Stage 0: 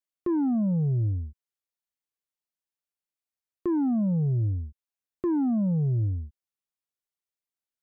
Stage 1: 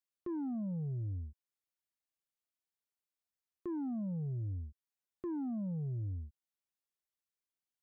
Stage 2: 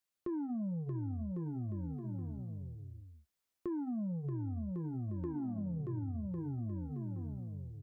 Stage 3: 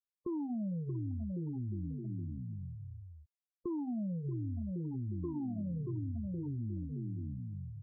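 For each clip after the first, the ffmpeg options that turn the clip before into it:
ffmpeg -i in.wav -af "alimiter=level_in=7dB:limit=-24dB:level=0:latency=1:release=448,volume=-7dB,volume=-4dB" out.wav
ffmpeg -i in.wav -filter_complex "[0:a]asplit=2[link_01][link_02];[link_02]aecho=0:1:630|1102|1457|1723|1922:0.631|0.398|0.251|0.158|0.1[link_03];[link_01][link_03]amix=inputs=2:normalize=0,flanger=delay=9.2:depth=1.9:regen=-59:speed=0.28:shape=sinusoidal,acompressor=threshold=-44dB:ratio=6,volume=8.5dB" out.wav
ffmpeg -i in.wav -af "aeval=exprs='val(0)+0.5*0.00251*sgn(val(0))':channel_layout=same,acrusher=samples=6:mix=1:aa=0.000001,afftfilt=real='re*gte(hypot(re,im),0.0141)':imag='im*gte(hypot(re,im),0.0141)':win_size=1024:overlap=0.75" out.wav

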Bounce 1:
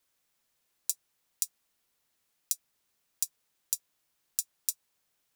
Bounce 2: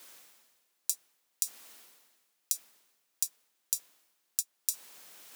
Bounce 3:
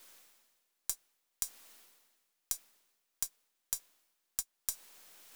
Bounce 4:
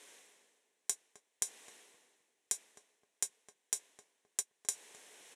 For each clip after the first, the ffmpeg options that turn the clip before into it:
ffmpeg -i in.wav -af "highpass=230,areverse,acompressor=mode=upward:threshold=-33dB:ratio=2.5,areverse" out.wav
ffmpeg -i in.wav -af "aeval=exprs='if(lt(val(0),0),0.708*val(0),val(0))':channel_layout=same,volume=-3.5dB" out.wav
ffmpeg -i in.wav -filter_complex "[0:a]highpass=220,equalizer=frequency=430:width_type=q:width=4:gain=7,equalizer=frequency=1300:width_type=q:width=4:gain=-8,equalizer=frequency=1900:width_type=q:width=4:gain=3,equalizer=frequency=4700:width_type=q:width=4:gain=-9,lowpass=frequency=9600:width=0.5412,lowpass=frequency=9600:width=1.3066,asplit=2[link_01][link_02];[link_02]adelay=261,lowpass=frequency=890:poles=1,volume=-10dB,asplit=2[link_03][link_04];[link_04]adelay=261,lowpass=frequency=890:poles=1,volume=0.33,asplit=2[link_05][link_06];[link_06]adelay=261,lowpass=frequency=890:poles=1,volume=0.33,asplit=2[link_07][link_08];[link_08]adelay=261,lowpass=frequency=890:poles=1,volume=0.33[link_09];[link_01][link_03][link_05][link_07][link_09]amix=inputs=5:normalize=0,volume=4dB" out.wav

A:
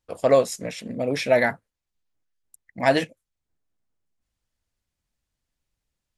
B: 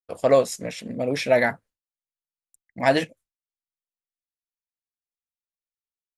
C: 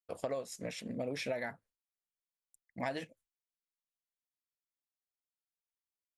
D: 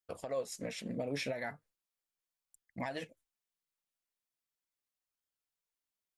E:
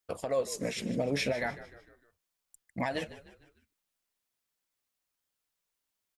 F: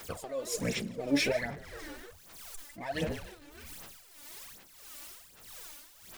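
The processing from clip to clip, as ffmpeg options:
ffmpeg -i in.wav -af "agate=range=-33dB:threshold=-47dB:ratio=3:detection=peak" out.wav
ffmpeg -i in.wav -af "acompressor=threshold=-26dB:ratio=12,volume=-7.5dB" out.wav
ffmpeg -i in.wav -af "alimiter=level_in=5dB:limit=-24dB:level=0:latency=1:release=183,volume=-5dB,flanger=delay=0.6:depth=6.7:regen=63:speed=0.38:shape=sinusoidal,volume=6dB" out.wav
ffmpeg -i in.wav -filter_complex "[0:a]asplit=5[link_01][link_02][link_03][link_04][link_05];[link_02]adelay=151,afreqshift=-59,volume=-15.5dB[link_06];[link_03]adelay=302,afreqshift=-118,volume=-22.1dB[link_07];[link_04]adelay=453,afreqshift=-177,volume=-28.6dB[link_08];[link_05]adelay=604,afreqshift=-236,volume=-35.2dB[link_09];[link_01][link_06][link_07][link_08][link_09]amix=inputs=5:normalize=0,volume=6.5dB" out.wav
ffmpeg -i in.wav -af "aeval=exprs='val(0)+0.5*0.00794*sgn(val(0))':channel_layout=same,tremolo=f=1.6:d=0.72,aphaser=in_gain=1:out_gain=1:delay=3.5:decay=0.69:speed=1.3:type=sinusoidal" out.wav

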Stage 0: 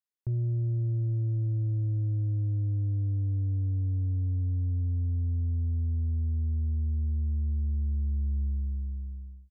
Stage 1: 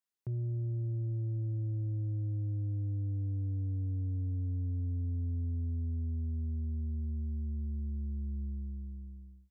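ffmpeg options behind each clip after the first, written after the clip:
ffmpeg -i in.wav -af "highpass=110,alimiter=level_in=5.5dB:limit=-24dB:level=0:latency=1,volume=-5.5dB" out.wav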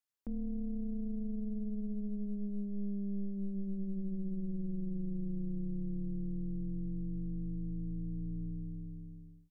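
ffmpeg -i in.wav -af "aeval=exprs='val(0)*sin(2*PI*100*n/s)':channel_layout=same,volume=1dB" out.wav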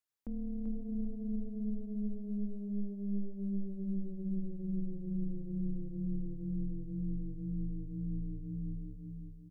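ffmpeg -i in.wav -af "aecho=1:1:389|778|1167|1556:0.562|0.157|0.0441|0.0123,volume=-1dB" out.wav

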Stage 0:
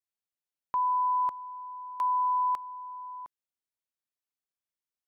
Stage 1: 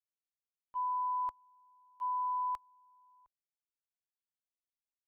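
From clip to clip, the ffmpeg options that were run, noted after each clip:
ffmpeg -i in.wav -af "agate=range=-17dB:threshold=-28dB:ratio=16:detection=peak,asubboost=boost=11.5:cutoff=73,volume=-6.5dB" out.wav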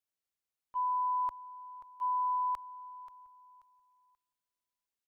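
ffmpeg -i in.wav -af "aecho=1:1:533|1066|1599:0.178|0.048|0.013,volume=2.5dB" out.wav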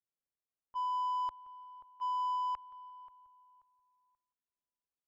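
ffmpeg -i in.wav -af "aecho=1:1:173|346:0.106|0.0297,adynamicsmooth=sensitivity=7:basefreq=1300,volume=-2.5dB" out.wav

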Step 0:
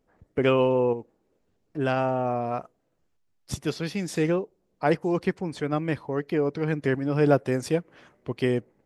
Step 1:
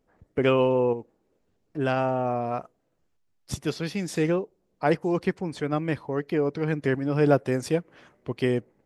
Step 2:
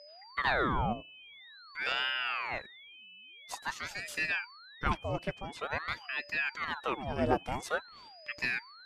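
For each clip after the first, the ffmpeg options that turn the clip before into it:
ffmpeg -i in.wav -af anull out.wav
ffmpeg -i in.wav -af "equalizer=frequency=170:width_type=o:width=1.7:gain=-7.5,aeval=exprs='val(0)+0.00631*sin(2*PI*2800*n/s)':channel_layout=same,aeval=exprs='val(0)*sin(2*PI*1200*n/s+1200*0.85/0.48*sin(2*PI*0.48*n/s))':channel_layout=same,volume=-3.5dB" out.wav

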